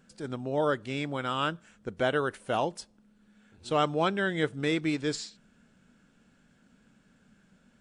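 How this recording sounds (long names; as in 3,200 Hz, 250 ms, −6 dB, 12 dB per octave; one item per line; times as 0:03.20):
background noise floor −65 dBFS
spectral slope −4.0 dB per octave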